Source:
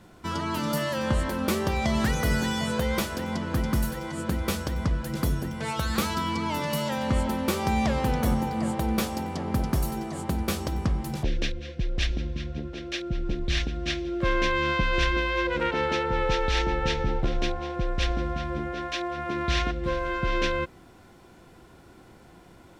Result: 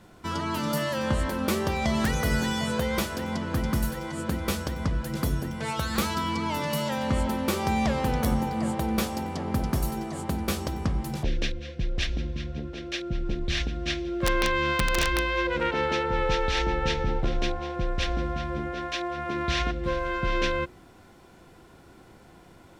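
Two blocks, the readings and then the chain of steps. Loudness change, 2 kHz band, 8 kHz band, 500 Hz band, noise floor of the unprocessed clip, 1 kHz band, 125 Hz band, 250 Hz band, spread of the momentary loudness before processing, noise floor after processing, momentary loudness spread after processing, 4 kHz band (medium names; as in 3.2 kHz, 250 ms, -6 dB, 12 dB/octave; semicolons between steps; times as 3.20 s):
-0.5 dB, 0.0 dB, +1.0 dB, 0.0 dB, -52 dBFS, 0.0 dB, -1.0 dB, -0.5 dB, 7 LU, -52 dBFS, 6 LU, 0.0 dB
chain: hum notches 60/120/180/240/300/360 Hz; integer overflow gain 13.5 dB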